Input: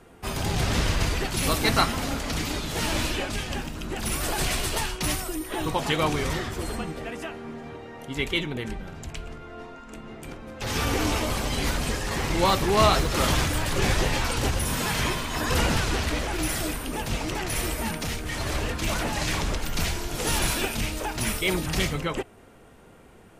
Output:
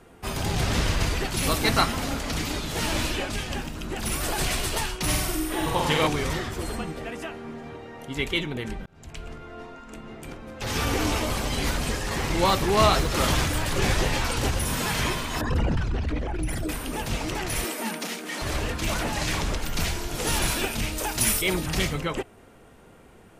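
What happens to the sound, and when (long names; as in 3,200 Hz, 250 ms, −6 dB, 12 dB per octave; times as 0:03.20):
0:05.03–0:06.07: flutter between parallel walls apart 8.2 metres, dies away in 0.94 s
0:08.86–0:09.27: fade in
0:15.41–0:16.69: spectral envelope exaggerated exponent 2
0:17.64–0:18.42: Butterworth high-pass 180 Hz 72 dB per octave
0:20.98–0:21.42: high-shelf EQ 4,800 Hz +11 dB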